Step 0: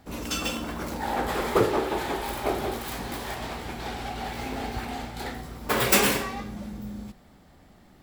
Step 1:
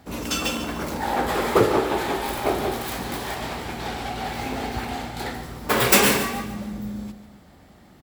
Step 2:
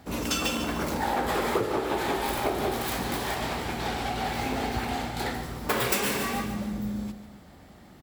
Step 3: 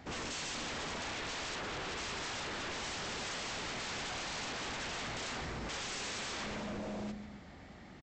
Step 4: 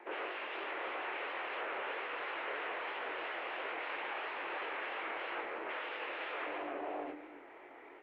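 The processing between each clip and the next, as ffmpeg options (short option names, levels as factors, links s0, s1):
-filter_complex "[0:a]highpass=48,asplit=2[s0][s1];[s1]aecho=0:1:144|288|432|576:0.251|0.0955|0.0363|0.0138[s2];[s0][s2]amix=inputs=2:normalize=0,volume=1.58"
-af "acompressor=threshold=0.0708:ratio=8"
-af "alimiter=limit=0.0794:level=0:latency=1:release=18,equalizer=f=2100:t=o:w=0.76:g=5.5,aresample=16000,aeval=exprs='0.0224*(abs(mod(val(0)/0.0224+3,4)-2)-1)':c=same,aresample=44100,volume=0.75"
-af "highpass=f=270:t=q:w=0.5412,highpass=f=270:t=q:w=1.307,lowpass=f=2700:t=q:w=0.5176,lowpass=f=2700:t=q:w=0.7071,lowpass=f=2700:t=q:w=1.932,afreqshift=90,flanger=delay=19.5:depth=7:speed=3,volume=2" -ar 48000 -c:a libopus -b:a 48k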